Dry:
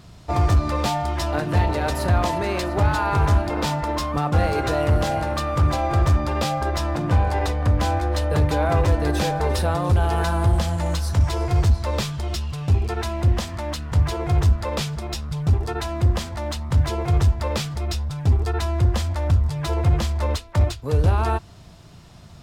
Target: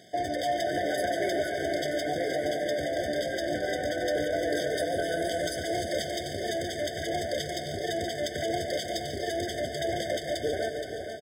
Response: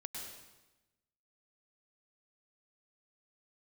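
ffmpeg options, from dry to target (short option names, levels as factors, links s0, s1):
-filter_complex "[0:a]highpass=420,bandreject=f=890:w=20,alimiter=limit=0.0841:level=0:latency=1:release=65,atempo=2,aecho=1:1:471|942|1413|1884|2355:0.398|0.183|0.0842|0.0388|0.0178,asplit=2[s0][s1];[1:a]atrim=start_sample=2205,adelay=143[s2];[s1][s2]afir=irnorm=-1:irlink=0,volume=0.562[s3];[s0][s3]amix=inputs=2:normalize=0,afftfilt=real='re*eq(mod(floor(b*sr/1024/750),2),0)':imag='im*eq(mod(floor(b*sr/1024/750),2),0)':win_size=1024:overlap=0.75,volume=1.33"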